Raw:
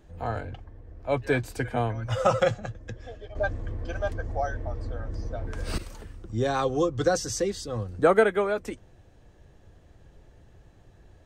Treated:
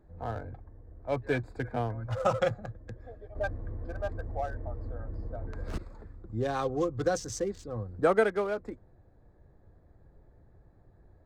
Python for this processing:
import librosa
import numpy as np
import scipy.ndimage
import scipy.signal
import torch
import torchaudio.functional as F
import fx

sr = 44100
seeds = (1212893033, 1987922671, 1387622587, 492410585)

y = fx.wiener(x, sr, points=15)
y = F.gain(torch.from_numpy(y), -4.5).numpy()